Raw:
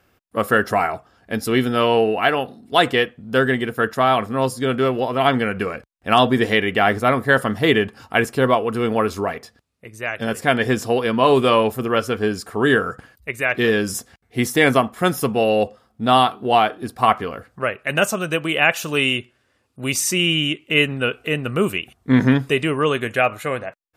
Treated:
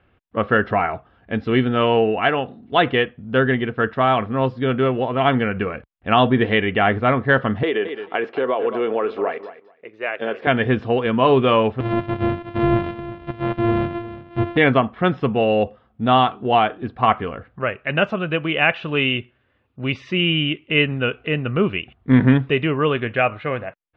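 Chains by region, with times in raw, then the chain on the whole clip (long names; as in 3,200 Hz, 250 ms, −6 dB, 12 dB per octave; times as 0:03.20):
0:07.63–0:10.47: repeating echo 217 ms, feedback 16%, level −16 dB + downward compressor 10 to 1, threshold −17 dBFS + high-pass with resonance 410 Hz, resonance Q 1.6
0:11.80–0:14.57: samples sorted by size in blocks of 128 samples + de-essing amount 95% + single-tap delay 357 ms −15 dB
whole clip: Butterworth low-pass 3,400 Hz 36 dB per octave; low-shelf EQ 150 Hz +7 dB; level −1 dB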